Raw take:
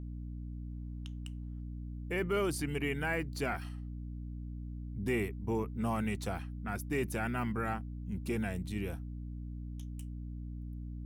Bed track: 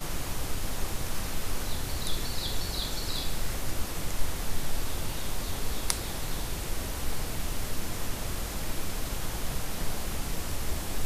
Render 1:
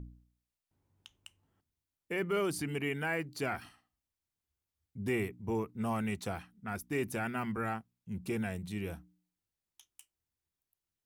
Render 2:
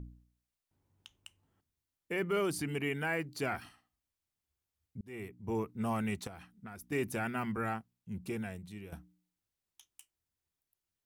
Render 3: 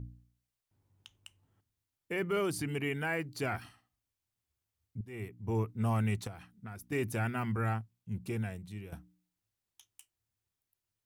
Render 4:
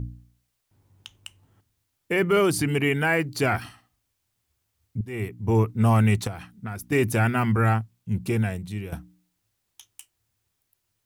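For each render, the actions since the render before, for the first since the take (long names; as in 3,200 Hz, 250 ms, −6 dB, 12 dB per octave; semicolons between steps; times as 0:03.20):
hum removal 60 Hz, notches 5
0:05.01–0:05.61: fade in; 0:06.27–0:06.92: downward compressor 10 to 1, threshold −42 dBFS; 0:07.94–0:08.92: fade out, to −11.5 dB
parametric band 110 Hz +11 dB 0.31 octaves
level +11.5 dB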